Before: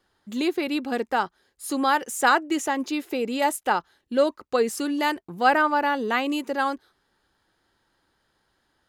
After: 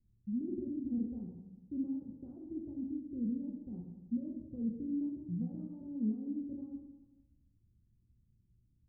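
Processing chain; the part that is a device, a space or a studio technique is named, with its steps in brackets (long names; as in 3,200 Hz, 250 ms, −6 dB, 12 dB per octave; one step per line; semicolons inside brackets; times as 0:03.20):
club heard from the street (brickwall limiter −16.5 dBFS, peak gain reduction 10.5 dB; low-pass filter 170 Hz 24 dB per octave; convolution reverb RT60 1.1 s, pre-delay 4 ms, DRR −1.5 dB)
0:03.05–0:03.73: parametric band 1,500 Hz −9.5 dB 1.5 octaves
level +5.5 dB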